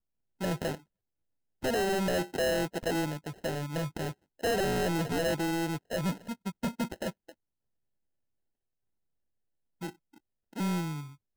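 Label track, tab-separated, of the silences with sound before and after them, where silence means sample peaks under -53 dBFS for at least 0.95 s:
7.320000	9.810000	silence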